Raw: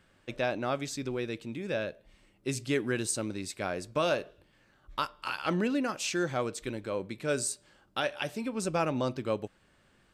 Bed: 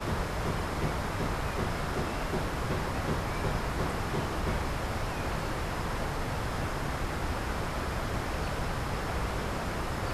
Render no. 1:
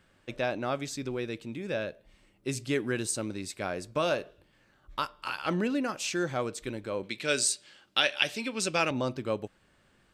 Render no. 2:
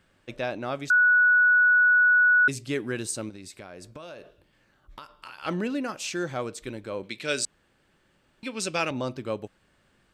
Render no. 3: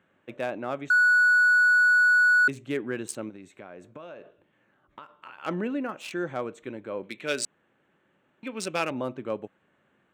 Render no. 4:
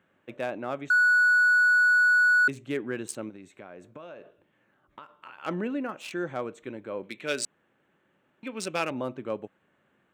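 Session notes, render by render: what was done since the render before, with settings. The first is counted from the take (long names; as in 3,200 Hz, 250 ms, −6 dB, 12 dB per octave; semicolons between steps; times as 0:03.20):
0:07.03–0:08.91: meter weighting curve D
0:00.90–0:02.48: beep over 1,470 Hz −15.5 dBFS; 0:03.29–0:05.42: downward compressor 10 to 1, threshold −38 dBFS; 0:07.45–0:08.43: fill with room tone
adaptive Wiener filter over 9 samples; high-pass filter 160 Hz 12 dB per octave
level −1 dB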